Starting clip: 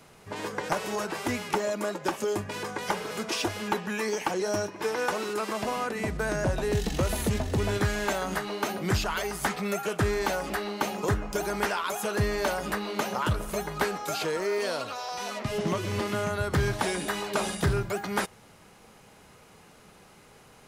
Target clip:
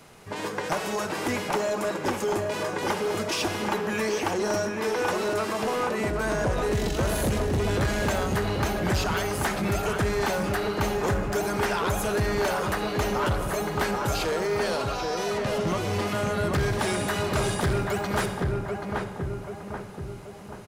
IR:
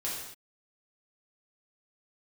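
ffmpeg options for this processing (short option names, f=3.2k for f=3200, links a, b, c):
-filter_complex "[0:a]asplit=2[a][b];[b]adelay=783,lowpass=f=1.4k:p=1,volume=-3dB,asplit=2[c][d];[d]adelay=783,lowpass=f=1.4k:p=1,volume=0.54,asplit=2[e][f];[f]adelay=783,lowpass=f=1.4k:p=1,volume=0.54,asplit=2[g][h];[h]adelay=783,lowpass=f=1.4k:p=1,volume=0.54,asplit=2[i][j];[j]adelay=783,lowpass=f=1.4k:p=1,volume=0.54,asplit=2[k][l];[l]adelay=783,lowpass=f=1.4k:p=1,volume=0.54,asplit=2[m][n];[n]adelay=783,lowpass=f=1.4k:p=1,volume=0.54[o];[a][c][e][g][i][k][m][o]amix=inputs=8:normalize=0,asplit=2[p][q];[1:a]atrim=start_sample=2205,adelay=51[r];[q][r]afir=irnorm=-1:irlink=0,volume=-15.5dB[s];[p][s]amix=inputs=2:normalize=0,asoftclip=type=tanh:threshold=-22dB,volume=3dB"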